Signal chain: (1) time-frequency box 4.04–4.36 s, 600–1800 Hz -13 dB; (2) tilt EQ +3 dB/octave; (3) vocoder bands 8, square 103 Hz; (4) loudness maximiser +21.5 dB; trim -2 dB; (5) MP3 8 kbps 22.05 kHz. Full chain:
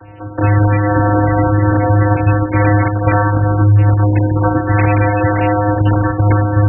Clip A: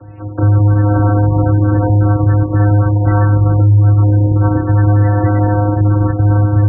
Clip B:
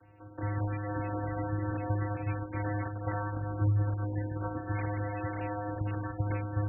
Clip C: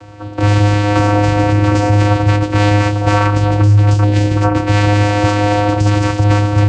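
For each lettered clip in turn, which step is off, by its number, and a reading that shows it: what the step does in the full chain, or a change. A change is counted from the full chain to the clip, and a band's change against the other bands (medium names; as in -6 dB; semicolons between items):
2, 2 kHz band -6.5 dB; 4, crest factor change +4.0 dB; 5, crest factor change -1.5 dB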